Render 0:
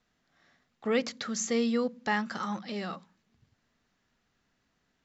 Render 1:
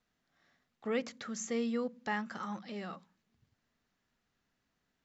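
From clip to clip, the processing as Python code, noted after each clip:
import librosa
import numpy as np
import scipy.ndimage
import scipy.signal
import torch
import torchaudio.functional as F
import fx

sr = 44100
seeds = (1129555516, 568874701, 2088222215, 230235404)

y = fx.dynamic_eq(x, sr, hz=4500.0, q=1.7, threshold_db=-53.0, ratio=4.0, max_db=-6)
y = y * librosa.db_to_amplitude(-6.0)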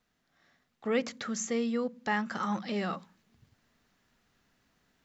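y = fx.rider(x, sr, range_db=4, speed_s=0.5)
y = y * librosa.db_to_amplitude(5.5)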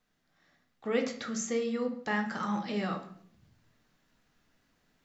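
y = fx.room_shoebox(x, sr, seeds[0], volume_m3=98.0, walls='mixed', distance_m=0.51)
y = y * librosa.db_to_amplitude(-2.0)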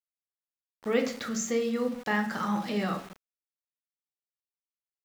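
y = np.where(np.abs(x) >= 10.0 ** (-46.0 / 20.0), x, 0.0)
y = y * librosa.db_to_amplitude(3.0)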